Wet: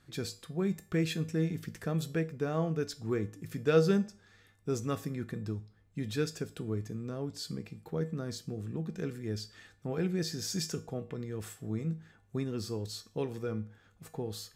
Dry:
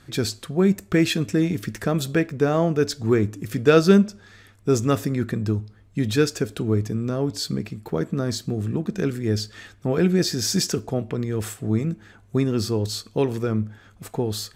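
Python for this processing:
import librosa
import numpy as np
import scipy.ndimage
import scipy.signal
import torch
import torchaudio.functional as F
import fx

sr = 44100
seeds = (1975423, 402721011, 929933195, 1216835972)

y = fx.comb_fb(x, sr, f0_hz=160.0, decay_s=0.36, harmonics='odd', damping=0.0, mix_pct=70)
y = F.gain(torch.from_numpy(y), -3.5).numpy()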